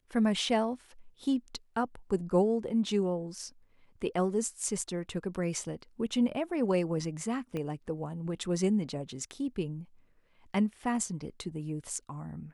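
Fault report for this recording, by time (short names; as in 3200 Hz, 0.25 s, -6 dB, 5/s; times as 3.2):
7.57 pop -24 dBFS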